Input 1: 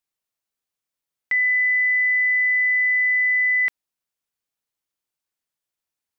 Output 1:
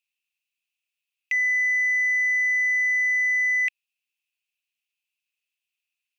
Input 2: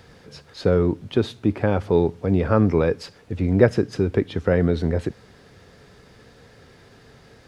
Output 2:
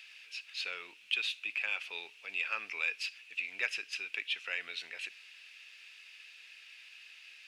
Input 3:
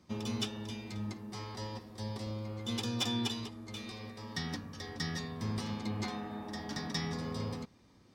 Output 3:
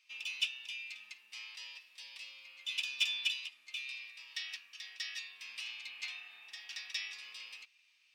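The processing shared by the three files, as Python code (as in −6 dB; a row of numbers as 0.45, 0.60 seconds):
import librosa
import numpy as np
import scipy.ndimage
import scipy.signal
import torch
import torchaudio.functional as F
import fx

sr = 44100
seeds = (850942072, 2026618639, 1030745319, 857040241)

p1 = fx.highpass_res(x, sr, hz=2600.0, q=11.0)
p2 = 10.0 ** (-18.5 / 20.0) * np.tanh(p1 / 10.0 ** (-18.5 / 20.0))
p3 = p1 + (p2 * 10.0 ** (-3.0 / 20.0))
y = p3 * 10.0 ** (-9.0 / 20.0)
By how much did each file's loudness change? −3.0, −14.5, −1.5 LU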